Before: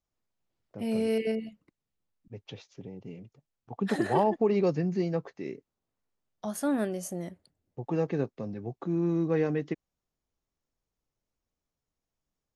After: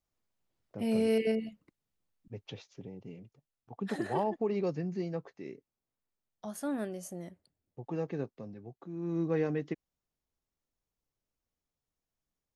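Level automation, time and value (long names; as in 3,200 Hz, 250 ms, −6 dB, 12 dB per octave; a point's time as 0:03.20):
0:02.34 0 dB
0:03.75 −6.5 dB
0:08.29 −6.5 dB
0:08.92 −13 dB
0:09.20 −3.5 dB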